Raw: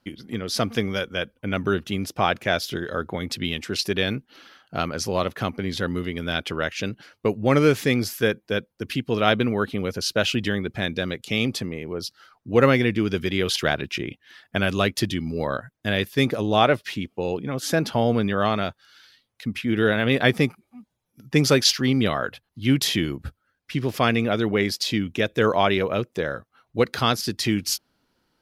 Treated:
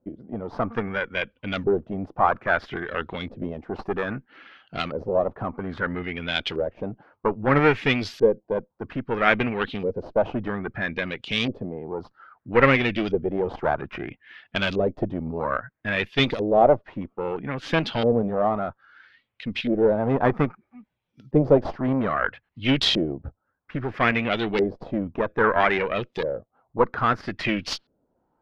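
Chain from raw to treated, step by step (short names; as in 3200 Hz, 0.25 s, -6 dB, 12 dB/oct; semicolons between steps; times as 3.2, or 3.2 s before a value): added harmonics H 8 -19 dB, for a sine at -1.5 dBFS; LFO low-pass saw up 0.61 Hz 470–4100 Hz; gain -2 dB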